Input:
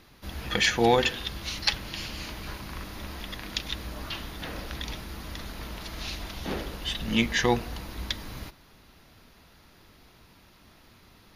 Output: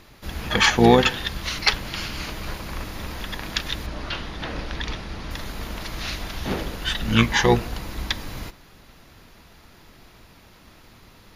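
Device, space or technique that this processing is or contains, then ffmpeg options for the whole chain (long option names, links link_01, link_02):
octave pedal: -filter_complex "[0:a]asettb=1/sr,asplit=3[link_01][link_02][link_03];[link_01]atrim=end=3.864[link_04];[link_02]atrim=start=3.86:end=5.31,asetpts=PTS-STARTPTS,afade=type=in:duration=0.004:curve=qsin,afade=type=out:start_time=1.446:duration=0.004:curve=qsin,lowpass=6200[link_05];[link_03]atrim=start=5.306[link_06];[link_04][link_05]acrossfade=duration=0.004:curve1=hsin:curve2=qsin[link_07];[link_07][link_06]acrossfade=duration=0.004:curve1=qsin:curve2=hsin,asplit=2[link_08][link_09];[link_09]asetrate=22050,aresample=44100,atempo=2,volume=-4dB[link_10];[link_08][link_10]amix=inputs=2:normalize=0,volume=4.5dB"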